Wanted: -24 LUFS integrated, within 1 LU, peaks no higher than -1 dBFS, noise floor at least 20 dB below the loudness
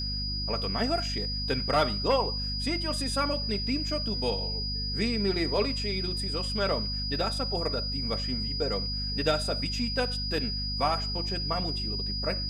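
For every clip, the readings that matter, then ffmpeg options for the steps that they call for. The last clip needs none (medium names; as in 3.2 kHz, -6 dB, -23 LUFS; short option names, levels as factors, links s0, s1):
hum 50 Hz; highest harmonic 250 Hz; hum level -32 dBFS; steady tone 4.9 kHz; tone level -32 dBFS; loudness -28.5 LUFS; peak level -12.5 dBFS; loudness target -24.0 LUFS
-> -af "bandreject=f=50:t=h:w=6,bandreject=f=100:t=h:w=6,bandreject=f=150:t=h:w=6,bandreject=f=200:t=h:w=6,bandreject=f=250:t=h:w=6"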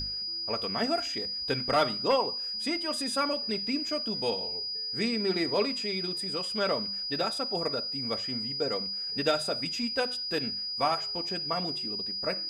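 hum not found; steady tone 4.9 kHz; tone level -32 dBFS
-> -af "bandreject=f=4900:w=30"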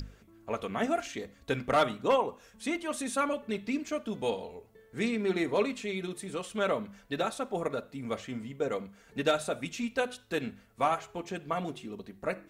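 steady tone not found; loudness -33.0 LUFS; peak level -13.5 dBFS; loudness target -24.0 LUFS
-> -af "volume=2.82"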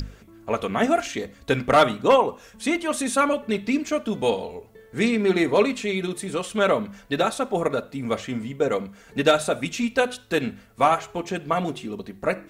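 loudness -23.5 LUFS; peak level -4.5 dBFS; noise floor -51 dBFS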